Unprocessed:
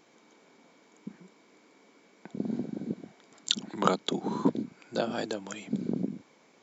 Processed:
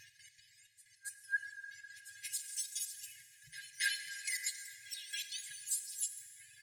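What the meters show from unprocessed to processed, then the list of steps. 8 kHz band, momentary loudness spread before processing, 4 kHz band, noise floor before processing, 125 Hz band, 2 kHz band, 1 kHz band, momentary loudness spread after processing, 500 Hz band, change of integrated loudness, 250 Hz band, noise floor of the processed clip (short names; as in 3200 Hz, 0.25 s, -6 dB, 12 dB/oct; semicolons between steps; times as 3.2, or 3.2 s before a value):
n/a, 19 LU, -6.5 dB, -62 dBFS, under -30 dB, +5.5 dB, under -40 dB, 16 LU, under -40 dB, -7.5 dB, under -40 dB, -67 dBFS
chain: spectrum mirrored in octaves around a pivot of 1400 Hz; reverb removal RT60 1.2 s; comb 2.4 ms, depth 75%; painted sound rise, 0.39–1.37, 350–1700 Hz -37 dBFS; compressor 6:1, threshold -43 dBFS, peak gain reduction 23.5 dB; step gate "x.x.xxx.." 158 bpm -12 dB; band shelf 720 Hz +11.5 dB 2.3 oct; pre-echo 0.277 s -16 dB; plate-style reverb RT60 4.1 s, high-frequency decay 0.45×, DRR 7 dB; FFT band-reject 170–1600 Hz; low shelf 180 Hz -4.5 dB; gain +9 dB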